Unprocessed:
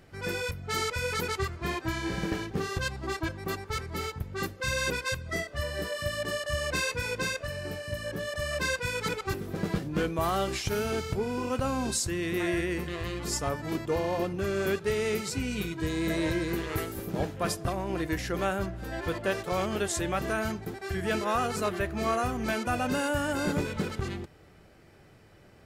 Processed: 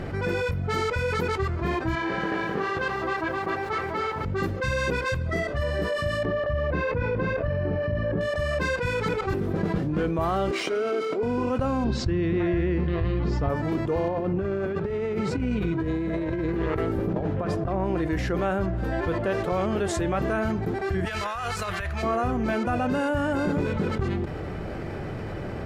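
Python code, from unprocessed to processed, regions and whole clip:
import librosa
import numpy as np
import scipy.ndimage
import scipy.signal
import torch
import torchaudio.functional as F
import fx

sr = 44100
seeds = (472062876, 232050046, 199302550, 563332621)

y = fx.chain(x, sr, fx.bandpass_q(hz=1400.0, q=0.53),
    fx.echo_crushed(ms=258, feedback_pct=35, bits=9, wet_db=-6), at=(1.95, 4.25))
y = fx.chain(y, sr, fx.spacing_loss(db_at_10k=37),
    fx.env_flatten(amount_pct=50), at=(6.25, 8.21))
y = fx.chain(y, sr, fx.highpass(hz=290.0, slope=24),
    fx.notch_comb(f0_hz=870.0),
    fx.resample_linear(factor=3), at=(10.51, 11.23))
y = fx.chain(y, sr, fx.lowpass(hz=4900.0, slope=24),
    fx.low_shelf(hz=250.0, db=9.5), at=(11.84, 13.49))
y = fx.chain(y, sr, fx.lowpass(hz=2100.0, slope=6),
    fx.over_compress(threshold_db=-33.0, ratio=-0.5), at=(14.08, 17.84))
y = fx.chain(y, sr, fx.tone_stack(knobs='10-0-10'),
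    fx.over_compress(threshold_db=-41.0, ratio=-0.5), at=(21.05, 22.03))
y = fx.lowpass(y, sr, hz=1200.0, slope=6)
y = fx.env_flatten(y, sr, amount_pct=70)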